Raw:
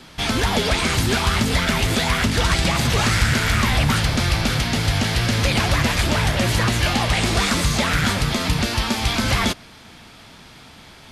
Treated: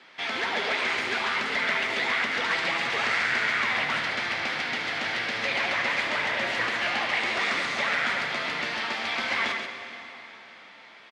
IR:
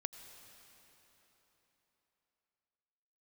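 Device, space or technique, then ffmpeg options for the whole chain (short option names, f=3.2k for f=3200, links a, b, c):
station announcement: -filter_complex "[0:a]highpass=450,lowpass=3.8k,equalizer=f=2k:t=o:w=0.55:g=7.5,aecho=1:1:75.8|137:0.282|0.501[a];[1:a]atrim=start_sample=2205[b];[a][b]afir=irnorm=-1:irlink=0,volume=-5.5dB"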